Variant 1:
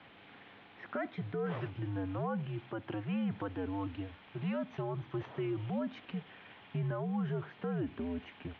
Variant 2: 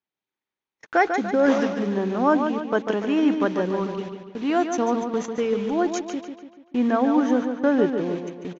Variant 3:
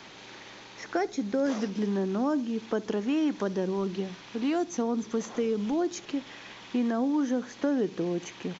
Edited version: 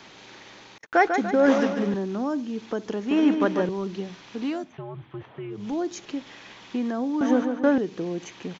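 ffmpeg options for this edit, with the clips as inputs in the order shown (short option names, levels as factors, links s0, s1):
-filter_complex "[1:a]asplit=3[s0][s1][s2];[2:a]asplit=5[s3][s4][s5][s6][s7];[s3]atrim=end=0.782[s8];[s0]atrim=start=0.778:end=1.942[s9];[s4]atrim=start=1.938:end=3.112[s10];[s1]atrim=start=3.108:end=3.692[s11];[s5]atrim=start=3.688:end=4.73[s12];[0:a]atrim=start=4.49:end=5.73[s13];[s6]atrim=start=5.49:end=7.212[s14];[s2]atrim=start=7.208:end=7.782[s15];[s7]atrim=start=7.778[s16];[s8][s9]acrossfade=d=0.004:c1=hsin:c2=hsin[s17];[s17][s10]acrossfade=d=0.004:c1=hsin:c2=hsin[s18];[s18][s11]acrossfade=d=0.004:c1=hsin:c2=hsin[s19];[s19][s12]acrossfade=d=0.004:c1=hsin:c2=hsin[s20];[s20][s13]acrossfade=d=0.24:c1=tri:c2=tri[s21];[s21][s14]acrossfade=d=0.24:c1=tri:c2=tri[s22];[s22][s15]acrossfade=d=0.004:c1=hsin:c2=hsin[s23];[s23][s16]acrossfade=d=0.004:c1=hsin:c2=hsin"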